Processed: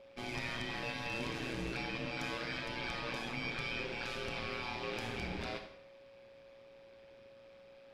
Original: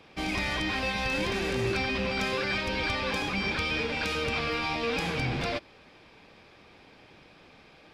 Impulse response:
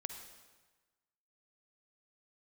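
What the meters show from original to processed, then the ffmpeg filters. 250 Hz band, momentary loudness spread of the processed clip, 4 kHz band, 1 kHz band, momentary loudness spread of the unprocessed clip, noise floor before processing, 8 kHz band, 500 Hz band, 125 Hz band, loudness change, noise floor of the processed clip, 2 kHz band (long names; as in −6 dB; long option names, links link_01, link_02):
−10.0 dB, 20 LU, −10.0 dB, −10.0 dB, 2 LU, −55 dBFS, −10.0 dB, −10.5 dB, −10.0 dB, −10.0 dB, −58 dBFS, −10.0 dB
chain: -filter_complex "[0:a]aeval=exprs='val(0)*sin(2*PI*59*n/s)':channel_layout=same,aeval=exprs='val(0)+0.00501*sin(2*PI*550*n/s)':channel_layout=same[link_01];[1:a]atrim=start_sample=2205,asetrate=79380,aresample=44100[link_02];[link_01][link_02]afir=irnorm=-1:irlink=0"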